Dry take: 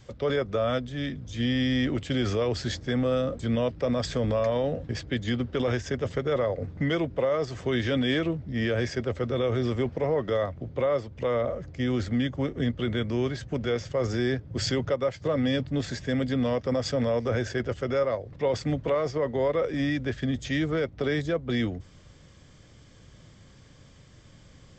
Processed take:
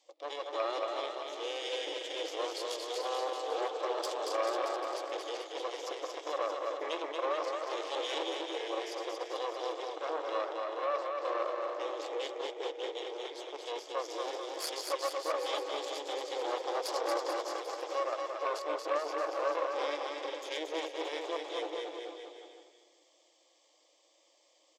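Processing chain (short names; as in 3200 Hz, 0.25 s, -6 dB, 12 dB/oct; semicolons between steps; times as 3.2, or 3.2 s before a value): regenerating reverse delay 0.199 s, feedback 49%, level -6 dB; fixed phaser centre 400 Hz, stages 6; added harmonics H 4 -6 dB, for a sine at -16 dBFS; brick-wall FIR high-pass 310 Hz; bouncing-ball echo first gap 0.23 s, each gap 0.9×, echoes 5; gain -8.5 dB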